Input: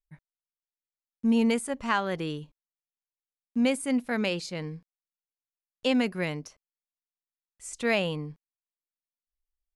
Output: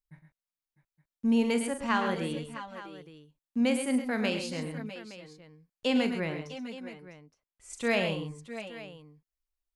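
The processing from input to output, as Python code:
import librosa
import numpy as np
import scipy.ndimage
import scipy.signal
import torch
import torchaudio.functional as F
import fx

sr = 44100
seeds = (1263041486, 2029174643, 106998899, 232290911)

y = fx.high_shelf(x, sr, hz=4600.0, db=-12.0, at=(6.15, 7.7))
y = fx.echo_multitap(y, sr, ms=(43, 108, 133, 651, 660, 868), db=(-10.0, -9.5, -10.5, -15.5, -15.5, -16.5))
y = F.gain(torch.from_numpy(y), -2.5).numpy()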